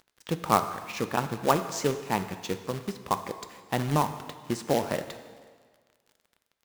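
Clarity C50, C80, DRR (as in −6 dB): 10.5 dB, 12.0 dB, 9.0 dB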